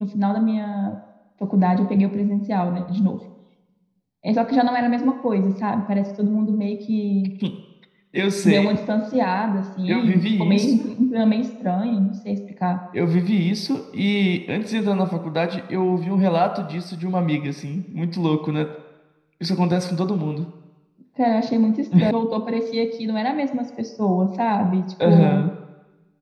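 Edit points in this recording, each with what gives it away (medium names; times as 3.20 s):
22.11 s: sound stops dead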